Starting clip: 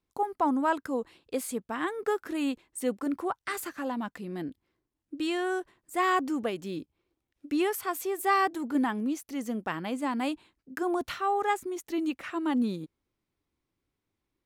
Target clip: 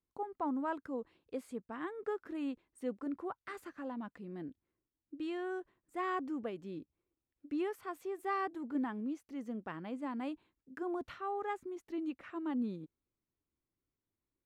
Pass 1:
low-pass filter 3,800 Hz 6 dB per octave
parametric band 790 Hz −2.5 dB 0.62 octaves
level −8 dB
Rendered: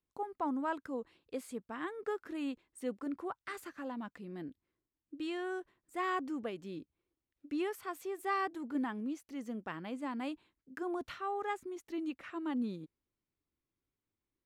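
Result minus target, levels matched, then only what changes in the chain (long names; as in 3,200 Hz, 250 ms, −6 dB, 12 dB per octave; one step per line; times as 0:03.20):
4,000 Hz band +5.0 dB
change: low-pass filter 1,400 Hz 6 dB per octave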